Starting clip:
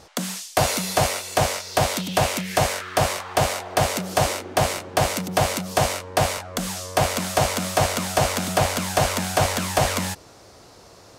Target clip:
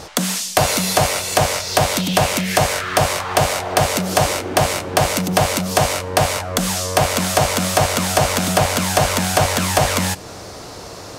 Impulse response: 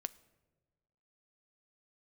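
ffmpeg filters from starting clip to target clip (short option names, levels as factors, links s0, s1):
-filter_complex "[0:a]acompressor=threshold=0.02:ratio=2,asplit=2[s0][s1];[1:a]atrim=start_sample=2205[s2];[s1][s2]afir=irnorm=-1:irlink=0,volume=5.62[s3];[s0][s3]amix=inputs=2:normalize=0,volume=0.891"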